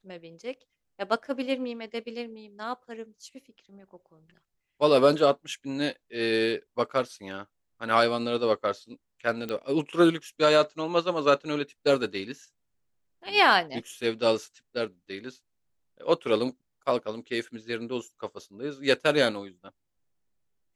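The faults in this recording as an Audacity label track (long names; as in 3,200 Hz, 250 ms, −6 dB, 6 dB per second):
9.490000	9.490000	click −20 dBFS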